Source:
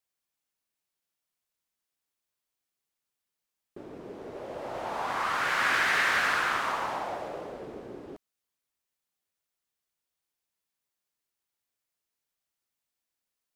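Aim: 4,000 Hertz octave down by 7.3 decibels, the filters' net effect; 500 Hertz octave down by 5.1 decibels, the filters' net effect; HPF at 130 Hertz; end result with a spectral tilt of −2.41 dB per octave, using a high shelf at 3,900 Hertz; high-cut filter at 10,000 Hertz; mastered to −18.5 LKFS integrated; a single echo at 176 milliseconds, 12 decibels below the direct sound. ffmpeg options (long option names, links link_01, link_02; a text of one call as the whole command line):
ffmpeg -i in.wav -af "highpass=130,lowpass=10000,equalizer=frequency=500:width_type=o:gain=-6.5,highshelf=frequency=3900:gain=-3.5,equalizer=frequency=4000:width_type=o:gain=-8,aecho=1:1:176:0.251,volume=11dB" out.wav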